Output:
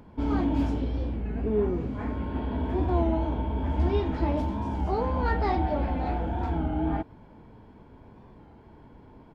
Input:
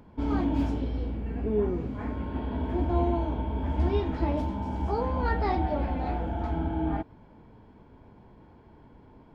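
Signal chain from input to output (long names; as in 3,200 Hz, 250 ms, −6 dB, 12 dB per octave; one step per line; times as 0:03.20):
in parallel at −10 dB: soft clipping −31 dBFS, distortion −8 dB
on the sum: downsampling to 32,000 Hz
wow of a warped record 33 1/3 rpm, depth 100 cents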